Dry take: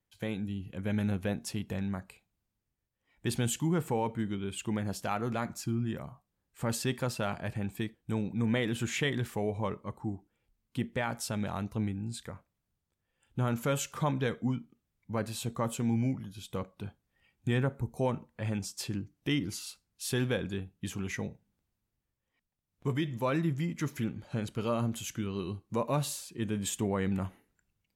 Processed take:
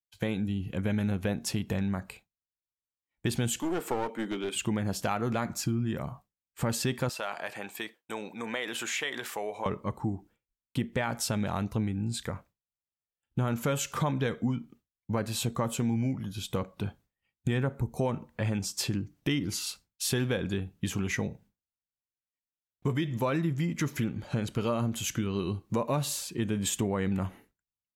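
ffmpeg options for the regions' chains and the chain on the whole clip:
ffmpeg -i in.wav -filter_complex "[0:a]asettb=1/sr,asplit=3[link_01][link_02][link_03];[link_01]atrim=end=3.604[link_04];[link_02]atrim=start=3.6:end=4.56,asetpts=PTS-STARTPTS,afade=type=in:duration=0.004:curve=qsin,afade=type=out:start_time=0.956:duration=0.004:curve=qsin,highpass=frequency=270:width=0.5412,highpass=frequency=270:width=1.3066,aeval=exprs='clip(val(0),-1,0.0126)':channel_layout=same[link_05];[link_03]atrim=start=4.556[link_06];[link_04][link_05]acrossfade=duration=0.004:curve1=hsin:curve2=qsin[link_07];[link_07][link_06]acrossfade=duration=0.004:curve1=qsin:curve2=hsin,asettb=1/sr,asplit=3[link_08][link_09][link_10];[link_08]atrim=end=7.094[link_11];[link_09]atrim=start=7.09:end=9.66,asetpts=PTS-STARTPTS,afade=type=in:duration=0.004:curve=qsin,afade=type=out:start_time=2.566:duration=0.004:curve=qsin,highpass=600,acompressor=threshold=-40dB:ratio=2:attack=3.2:release=140:knee=1:detection=peak[link_12];[link_10]atrim=start=9.656[link_13];[link_11][link_12]acrossfade=duration=0.004:curve1=hsin:curve2=qsin[link_14];[link_14][link_13]acrossfade=duration=0.004:curve1=qsin:curve2=hsin,agate=range=-33dB:threshold=-55dB:ratio=3:detection=peak,equalizer=frequency=9600:width_type=o:width=0.33:gain=-3,acompressor=threshold=-36dB:ratio=3,volume=8.5dB" out.wav

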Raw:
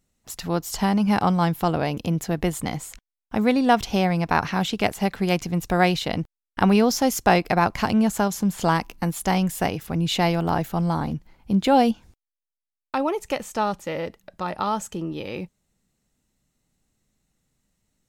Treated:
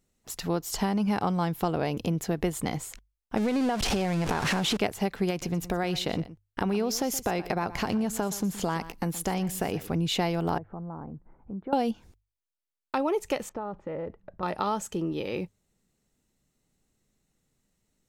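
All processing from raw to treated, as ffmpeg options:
ffmpeg -i in.wav -filter_complex "[0:a]asettb=1/sr,asplit=3[link_01][link_02][link_03];[link_01]atrim=end=3.374[link_04];[link_02]atrim=start=3.37:end=4.77,asetpts=PTS-STARTPTS,afade=type=in:duration=0.004:curve=qsin,afade=type=out:start_time=1.396:duration=0.004:curve=qsin,aeval=exprs='val(0)+0.5*0.1*sgn(val(0))':channel_layout=same,lowpass=10000,acompressor=threshold=-20dB:ratio=6:attack=3.2:release=140:knee=1:detection=peak[link_05];[link_03]atrim=start=4.766[link_06];[link_04][link_05]acrossfade=duration=0.004:curve1=hsin:curve2=qsin[link_07];[link_07][link_06]acrossfade=duration=0.004:curve1=qsin:curve2=hsin,asettb=1/sr,asplit=3[link_08][link_09][link_10];[link_08]atrim=end=5.304[link_11];[link_09]atrim=start=5.3:end=9.88,asetpts=PTS-STARTPTS,afade=type=in:duration=0.004:curve=qsin,afade=type=out:start_time=4.576:duration=0.004:curve=qsin,acompressor=threshold=-21dB:ratio=4:attack=3.2:release=140:knee=1:detection=peak,aecho=1:1:121:0.15,atrim=end_sample=201978[link_12];[link_10]atrim=start=9.876[link_13];[link_11][link_12]acrossfade=duration=0.004:curve1=hsin:curve2=qsin[link_14];[link_14][link_13]acrossfade=duration=0.004:curve1=qsin:curve2=hsin,asettb=1/sr,asplit=3[link_15][link_16][link_17];[link_15]atrim=end=10.584[link_18];[link_16]atrim=start=10.58:end=11.73,asetpts=PTS-STARTPTS,afade=type=in:duration=0.004:curve=qsin,afade=type=out:start_time=1.146:duration=0.004:curve=qsin,acompressor=threshold=-44dB:ratio=2:attack=3.2:release=140:knee=1:detection=peak,lowpass=frequency=1400:width=0.5412,lowpass=frequency=1400:width=1.3066[link_19];[link_17]atrim=start=11.726[link_20];[link_18][link_19]acrossfade=duration=0.004:curve1=hsin:curve2=qsin[link_21];[link_21][link_20]acrossfade=duration=0.004:curve1=qsin:curve2=hsin,asettb=1/sr,asplit=3[link_22][link_23][link_24];[link_22]atrim=end=13.494[link_25];[link_23]atrim=start=13.49:end=14.43,asetpts=PTS-STARTPTS,afade=type=in:duration=0.004:curve=qsin,afade=type=out:start_time=0.936:duration=0.004:curve=qsin,lowpass=1300,asubboost=boost=5:cutoff=170,acompressor=threshold=-30dB:ratio=5:attack=3.2:release=140:knee=1:detection=peak[link_26];[link_24]atrim=start=14.426[link_27];[link_25][link_26]acrossfade=duration=0.004:curve1=hsin:curve2=qsin[link_28];[link_28][link_27]acrossfade=duration=0.004:curve1=qsin:curve2=hsin,bandreject=frequency=50:width_type=h:width=6,bandreject=frequency=100:width_type=h:width=6,acompressor=threshold=-22dB:ratio=4,equalizer=frequency=410:width=2.3:gain=4.5,volume=-2dB" out.wav

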